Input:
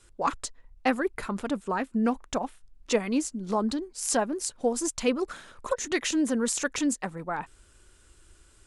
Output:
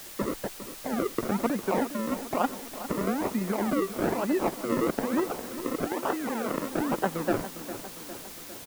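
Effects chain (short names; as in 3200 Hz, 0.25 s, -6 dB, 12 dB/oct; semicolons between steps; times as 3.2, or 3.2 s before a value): negative-ratio compressor -30 dBFS, ratio -1; decimation with a swept rate 38×, swing 100% 1.1 Hz; three-band isolator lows -16 dB, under 180 Hz, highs -21 dB, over 2000 Hz; feedback echo 0.405 s, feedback 58%, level -12.5 dB; added noise white -49 dBFS; 5.87–6.69 low shelf 220 Hz -9.5 dB; gain +5 dB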